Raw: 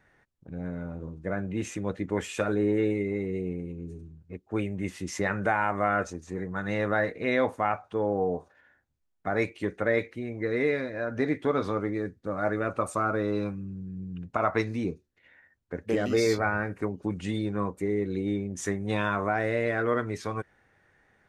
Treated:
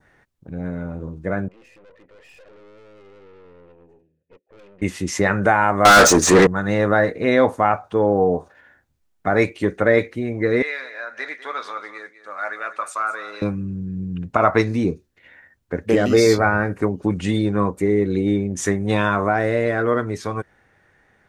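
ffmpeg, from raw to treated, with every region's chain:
ffmpeg -i in.wav -filter_complex "[0:a]asettb=1/sr,asplit=3[link_01][link_02][link_03];[link_01]atrim=end=1.484[link_04];[link_02]atrim=start=1.48:end=4.82,asetpts=PTS-STARTPTS,afade=type=in:duration=0.004:curve=qsin,afade=type=out:start_time=3.336:duration=0.004:curve=qsin,asplit=3[link_05][link_06][link_07];[link_05]bandpass=frequency=530:width_type=q:width=8,volume=0dB[link_08];[link_06]bandpass=frequency=1840:width_type=q:width=8,volume=-6dB[link_09];[link_07]bandpass=frequency=2480:width_type=q:width=8,volume=-9dB[link_10];[link_08][link_09][link_10]amix=inputs=3:normalize=0,acompressor=threshold=-46dB:ratio=3:attack=3.2:release=140:knee=1:detection=peak,aeval=exprs='(tanh(562*val(0)+0.65)-tanh(0.65))/562':channel_layout=same[link_11];[link_03]atrim=start=4.816[link_12];[link_04][link_11]acrossfade=duration=0.004:curve1=hsin:curve2=qsin[link_13];[link_13][link_12]acrossfade=duration=0.004:curve1=qsin:curve2=hsin,asettb=1/sr,asplit=3[link_14][link_15][link_16];[link_14]atrim=end=5.854[link_17];[link_15]atrim=start=5.85:end=6.47,asetpts=PTS-STARTPTS,afade=type=in:duration=0.004:curve=qsin,afade=type=out:start_time=0.616:duration=0.004:curve=qsin,highshelf=frequency=6300:gain=5,asplit=2[link_18][link_19];[link_19]highpass=frequency=720:poles=1,volume=35dB,asoftclip=type=tanh:threshold=-12dB[link_20];[link_18][link_20]amix=inputs=2:normalize=0,lowpass=frequency=5500:poles=1,volume=-6dB[link_21];[link_16]atrim=start=6.466[link_22];[link_17][link_21]acrossfade=duration=0.004:curve1=hsin:curve2=qsin[link_23];[link_23][link_22]acrossfade=duration=0.004:curve1=qsin:curve2=hsin,asettb=1/sr,asplit=3[link_24][link_25][link_26];[link_24]atrim=end=10.624[link_27];[link_25]atrim=start=10.62:end=13.42,asetpts=PTS-STARTPTS,afade=type=in:duration=0.004:curve=qsin,afade=type=out:start_time=2.796:duration=0.004:curve=qsin,highpass=1400,highshelf=frequency=8000:gain=-10,aecho=1:1:200:0.2,atrim=end_sample=123480[link_28];[link_26]atrim=start=13.416[link_29];[link_27][link_28]acrossfade=duration=0.004:curve1=hsin:curve2=qsin[link_30];[link_30][link_29]acrossfade=duration=0.004:curve1=qsin:curve2=hsin,adynamicequalizer=threshold=0.00447:dfrequency=2400:dqfactor=1.4:tfrequency=2400:tqfactor=1.4:attack=5:release=100:ratio=0.375:range=2.5:mode=cutabove:tftype=bell,dynaudnorm=framelen=370:gausssize=13:maxgain=3dB,volume=7dB" out.wav

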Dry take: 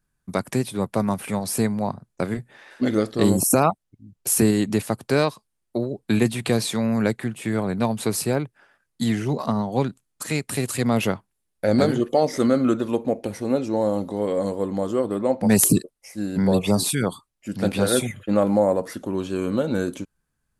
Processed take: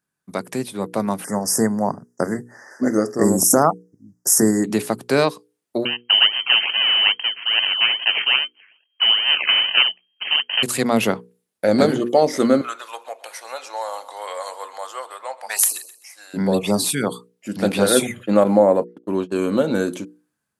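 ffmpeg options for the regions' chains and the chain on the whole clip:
ffmpeg -i in.wav -filter_complex "[0:a]asettb=1/sr,asplit=3[link_01][link_02][link_03];[link_01]atrim=end=1.244[link_04];[link_02]atrim=start=1.24:end=4.64,asetpts=PTS-STARTPTS,afade=type=in:duration=0.004:curve=qsin,afade=type=out:start_time=3.396:duration=0.004:curve=qsin,asuperstop=centerf=3100:order=20:qfactor=1.1,equalizer=frequency=6200:width_type=o:width=0.71:gain=7.5[link_05];[link_03]atrim=start=4.636[link_06];[link_04][link_05]acrossfade=duration=0.004:curve1=hsin:curve2=qsin[link_07];[link_07][link_06]acrossfade=duration=0.004:curve1=qsin:curve2=hsin,asettb=1/sr,asplit=3[link_08][link_09][link_10];[link_08]atrim=end=5.854[link_11];[link_09]atrim=start=5.85:end=10.63,asetpts=PTS-STARTPTS,afade=type=in:duration=0.004:curve=qsin,afade=type=out:start_time=4.776:duration=0.004:curve=qsin,acrusher=samples=32:mix=1:aa=0.000001:lfo=1:lforange=32:lforate=2.4,lowpass=frequency=2700:width_type=q:width=0.5098,lowpass=frequency=2700:width_type=q:width=0.6013,lowpass=frequency=2700:width_type=q:width=0.9,lowpass=frequency=2700:width_type=q:width=2.563,afreqshift=-3200[link_12];[link_10]atrim=start=10.626[link_13];[link_11][link_12]acrossfade=duration=0.004:curve1=hsin:curve2=qsin[link_14];[link_14][link_13]acrossfade=duration=0.004:curve1=qsin:curve2=hsin,asettb=1/sr,asplit=3[link_15][link_16][link_17];[link_15]atrim=end=12.614[link_18];[link_16]atrim=start=12.61:end=16.34,asetpts=PTS-STARTPTS,afade=type=in:duration=0.004:curve=qsin,afade=type=out:start_time=3.726:duration=0.004:curve=qsin,highpass=frequency=840:width=0.5412,highpass=frequency=840:width=1.3066,aecho=1:1:129|258|387:0.141|0.0396|0.0111,atrim=end_sample=164493[link_19];[link_17]atrim=start=16.336[link_20];[link_18][link_19]acrossfade=duration=0.004:curve1=hsin:curve2=qsin[link_21];[link_21][link_20]acrossfade=duration=0.004:curve1=qsin:curve2=hsin,asettb=1/sr,asplit=3[link_22][link_23][link_24];[link_22]atrim=end=18.444[link_25];[link_23]atrim=start=18.44:end=19.32,asetpts=PTS-STARTPTS,afade=type=in:duration=0.004:curve=qsin,afade=type=out:start_time=0.876:duration=0.004:curve=qsin,acrossover=split=3400[link_26][link_27];[link_27]acompressor=threshold=-55dB:ratio=4:attack=1:release=60[link_28];[link_26][link_28]amix=inputs=2:normalize=0,agate=range=-45dB:threshold=-29dB:ratio=16:release=100:detection=peak[link_29];[link_24]atrim=start=19.316[link_30];[link_25][link_29]acrossfade=duration=0.004:curve1=hsin:curve2=qsin[link_31];[link_31][link_30]acrossfade=duration=0.004:curve1=qsin:curve2=hsin,highpass=180,bandreject=frequency=60:width_type=h:width=6,bandreject=frequency=120:width_type=h:width=6,bandreject=frequency=180:width_type=h:width=6,bandreject=frequency=240:width_type=h:width=6,bandreject=frequency=300:width_type=h:width=6,bandreject=frequency=360:width_type=h:width=6,bandreject=frequency=420:width_type=h:width=6,bandreject=frequency=480:width_type=h:width=6,dynaudnorm=framelen=500:gausssize=5:maxgain=11.5dB,volume=-1dB" out.wav

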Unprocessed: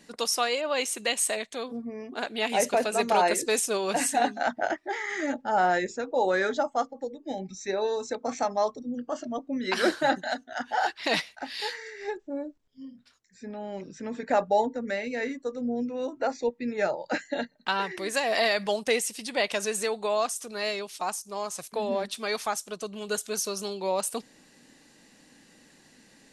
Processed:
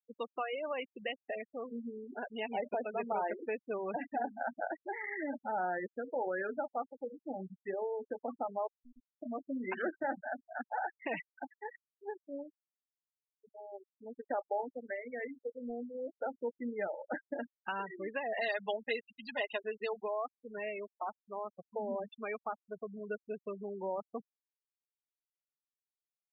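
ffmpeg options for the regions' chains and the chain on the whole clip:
ffmpeg -i in.wav -filter_complex "[0:a]asettb=1/sr,asplit=3[link_01][link_02][link_03];[link_01]atrim=end=8.674[link_04];[link_02]atrim=start=8.67:end=9.22,asetpts=PTS-STARTPTS,afade=type=in:duration=0.004:curve=qsin,afade=type=out:start_time=0.546:duration=0.004:curve=qsin,acompressor=threshold=-42dB:ratio=16:attack=3.2:release=140:knee=1:detection=peak,acrusher=bits=4:dc=4:mix=0:aa=0.000001[link_05];[link_03]atrim=start=9.216[link_06];[link_04][link_05]acrossfade=duration=0.004:curve1=hsin:curve2=qsin[link_07];[link_07][link_06]acrossfade=duration=0.004:curve1=qsin:curve2=hsin,asettb=1/sr,asplit=3[link_08][link_09][link_10];[link_08]atrim=end=11.534[link_11];[link_09]atrim=start=11.53:end=16.26,asetpts=PTS-STARTPTS,afade=type=in:duration=0.004:curve=qsin,afade=type=out:start_time=4.726:duration=0.004:curve=qsin,highpass=frequency=260:width=0.5412,highpass=frequency=260:width=1.3066,aeval=exprs='sgn(val(0))*max(abs(val(0))-0.00631,0)':channel_layout=same[link_12];[link_10]atrim=start=16.256[link_13];[link_11][link_12]acrossfade=duration=0.004:curve1=hsin:curve2=qsin[link_14];[link_14][link_13]acrossfade=duration=0.004:curve1=qsin:curve2=hsin,asettb=1/sr,asplit=3[link_15][link_16][link_17];[link_15]atrim=end=18.414[link_18];[link_16]atrim=start=18.41:end=20.03,asetpts=PTS-STARTPTS,afade=type=in:duration=0.004:curve=qsin,afade=type=out:start_time=1.616:duration=0.004:curve=qsin,aemphasis=mode=production:type=riaa,bandreject=frequency=2300:width=6.5,aecho=1:1:4.8:0.94,atrim=end_sample=71442[link_19];[link_17]atrim=start=20.026[link_20];[link_18][link_19]acrossfade=duration=0.004:curve1=hsin:curve2=qsin[link_21];[link_21][link_20]acrossfade=duration=0.004:curve1=qsin:curve2=hsin,lowpass=frequency=3000:width=0.5412,lowpass=frequency=3000:width=1.3066,acompressor=threshold=-30dB:ratio=2,afftfilt=real='re*gte(hypot(re,im),0.0447)':imag='im*gte(hypot(re,im),0.0447)':win_size=1024:overlap=0.75,volume=-5.5dB" out.wav

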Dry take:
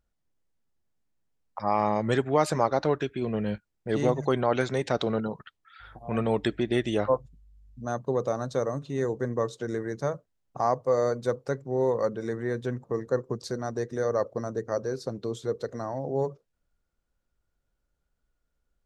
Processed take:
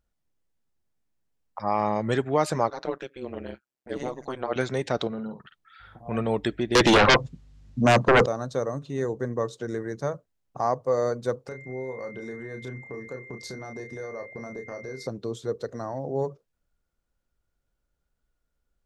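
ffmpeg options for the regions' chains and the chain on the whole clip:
ffmpeg -i in.wav -filter_complex "[0:a]asettb=1/sr,asplit=3[link_01][link_02][link_03];[link_01]atrim=end=2.704[link_04];[link_02]atrim=start=2.7:end=4.56,asetpts=PTS-STARTPTS,afade=type=in:duration=0.004:curve=qsin,afade=type=out:start_time=1.856:duration=0.004:curve=qsin,highpass=270,tremolo=f=130:d=1[link_05];[link_03]atrim=start=4.556[link_06];[link_04][link_05]acrossfade=duration=0.004:curve1=hsin:curve2=qsin[link_07];[link_07][link_06]acrossfade=duration=0.004:curve1=qsin:curve2=hsin,asettb=1/sr,asplit=3[link_08][link_09][link_10];[link_08]atrim=end=5.074[link_11];[link_09]atrim=start=5.07:end=6.06,asetpts=PTS-STARTPTS,afade=type=in:duration=0.004:curve=qsin,afade=type=out:start_time=0.986:duration=0.004:curve=qsin,equalizer=frequency=180:width=1.2:gain=6,acompressor=threshold=-49dB:ratio=1.5:attack=3.2:release=140:knee=1:detection=peak,asplit=2[link_12][link_13];[link_13]adelay=50,volume=-7.5dB[link_14];[link_12][link_14]amix=inputs=2:normalize=0,atrim=end_sample=43659[link_15];[link_10]atrim=start=6.056[link_16];[link_11][link_15]acrossfade=duration=0.004:curve1=hsin:curve2=qsin[link_17];[link_17][link_16]acrossfade=duration=0.004:curve1=qsin:curve2=hsin,asettb=1/sr,asplit=3[link_18][link_19][link_20];[link_18]atrim=end=6.754[link_21];[link_19]atrim=start=6.75:end=8.26,asetpts=PTS-STARTPTS,afade=type=in:duration=0.004:curve=qsin,afade=type=out:start_time=1.506:duration=0.004:curve=qsin,highpass=130,lowpass=6100,aeval=exprs='0.237*sin(PI/2*5.62*val(0)/0.237)':channel_layout=same[link_22];[link_20]atrim=start=8.256[link_23];[link_21][link_22]acrossfade=duration=0.004:curve1=hsin:curve2=qsin[link_24];[link_24][link_23]acrossfade=duration=0.004:curve1=qsin:curve2=hsin,asettb=1/sr,asplit=3[link_25][link_26][link_27];[link_25]atrim=end=11.484[link_28];[link_26]atrim=start=11.48:end=15.07,asetpts=PTS-STARTPTS,afade=type=in:duration=0.004:curve=qsin,afade=type=out:start_time=3.586:duration=0.004:curve=qsin,acompressor=threshold=-35dB:ratio=4:attack=3.2:release=140:knee=1:detection=peak,aeval=exprs='val(0)+0.00447*sin(2*PI*2100*n/s)':channel_layout=same,asplit=2[link_29][link_30];[link_30]adelay=31,volume=-6dB[link_31];[link_29][link_31]amix=inputs=2:normalize=0,atrim=end_sample=158319[link_32];[link_27]atrim=start=15.066[link_33];[link_28][link_32]acrossfade=duration=0.004:curve1=hsin:curve2=qsin[link_34];[link_34][link_33]acrossfade=duration=0.004:curve1=qsin:curve2=hsin" out.wav

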